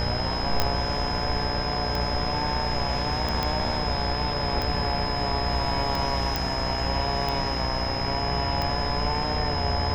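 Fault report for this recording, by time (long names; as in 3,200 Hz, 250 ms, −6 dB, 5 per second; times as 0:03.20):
mains buzz 60 Hz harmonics 39 −31 dBFS
scratch tick 45 rpm −14 dBFS
whistle 5,100 Hz −31 dBFS
0:00.60: click −6 dBFS
0:03.43: click −11 dBFS
0:06.36: click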